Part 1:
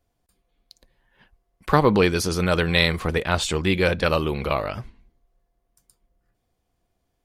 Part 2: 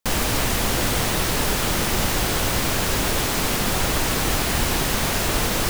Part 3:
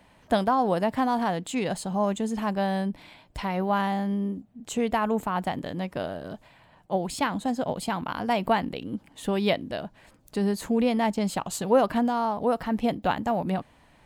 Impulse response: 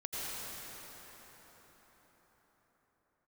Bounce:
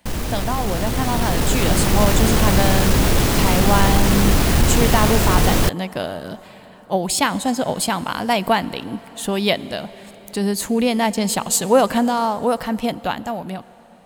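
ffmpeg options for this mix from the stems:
-filter_complex "[1:a]lowshelf=f=440:g=9.5,asoftclip=type=tanh:threshold=-7.5dB,volume=-7dB[a];[2:a]highshelf=f=3.3k:g=11.5,volume=-4dB,asplit=2[b][c];[c]volume=-20dB[d];[3:a]atrim=start_sample=2205[e];[d][e]afir=irnorm=-1:irlink=0[f];[a][b][f]amix=inputs=3:normalize=0,dynaudnorm=f=210:g=13:m=11.5dB"

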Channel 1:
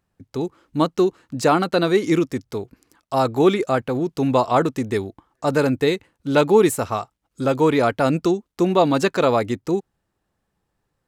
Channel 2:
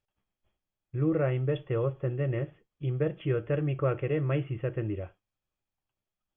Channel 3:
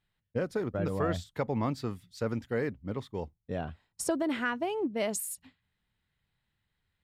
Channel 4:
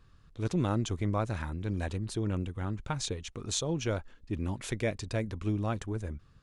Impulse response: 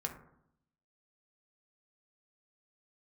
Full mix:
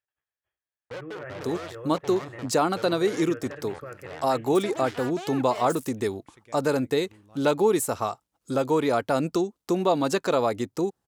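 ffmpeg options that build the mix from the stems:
-filter_complex "[0:a]equalizer=f=2.2k:t=o:w=1.8:g=-6.5,adelay=1100,volume=2.5dB[a];[1:a]equalizer=f=1.7k:w=3.2:g=13,volume=-8.5dB[b];[2:a]acrusher=bits=4:mix=0:aa=0.5,adelay=550,volume=-0.5dB[c];[3:a]adelay=1650,volume=-18dB[d];[b][c]amix=inputs=2:normalize=0,equalizer=f=210:w=2:g=-13.5,alimiter=level_in=4dB:limit=-24dB:level=0:latency=1:release=18,volume=-4dB,volume=0dB[e];[a][d]amix=inputs=2:normalize=0,equalizer=f=200:w=0.32:g=-3.5,acompressor=threshold=-25dB:ratio=1.5,volume=0dB[f];[e][f]amix=inputs=2:normalize=0,highpass=55,lowshelf=f=160:g=-7"

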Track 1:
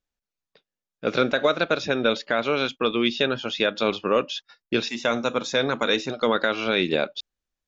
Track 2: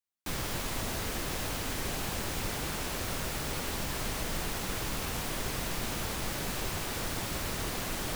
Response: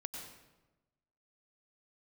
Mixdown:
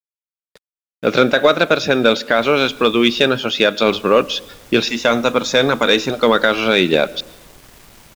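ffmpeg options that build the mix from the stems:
-filter_complex "[0:a]acontrast=73,volume=1.5dB,asplit=2[a][b];[b]volume=-15.5dB[c];[1:a]asoftclip=type=tanh:threshold=-30.5dB,adelay=2100,volume=-9.5dB,asplit=3[d][e][f];[d]atrim=end=3.25,asetpts=PTS-STARTPTS,afade=t=out:st=3.246:d=0.004:c=hsin[g];[e]atrim=start=3.25:end=3.87,asetpts=PTS-STARTPTS,volume=0[h];[f]atrim=start=3.87,asetpts=PTS-STARTPTS,afade=t=in:d=0.004:c=hsin[i];[g][h][i]concat=n=3:v=0:a=1,asplit=2[j][k];[k]volume=-5dB[l];[2:a]atrim=start_sample=2205[m];[c][m]afir=irnorm=-1:irlink=0[n];[l]aecho=0:1:178:1[o];[a][j][n][o]amix=inputs=4:normalize=0,acrusher=bits=6:mix=0:aa=0.5"

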